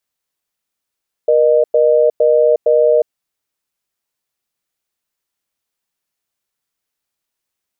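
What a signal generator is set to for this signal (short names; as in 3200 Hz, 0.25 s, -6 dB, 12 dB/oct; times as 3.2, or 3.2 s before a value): cadence 475 Hz, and 612 Hz, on 0.36 s, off 0.10 s, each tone -11 dBFS 1.74 s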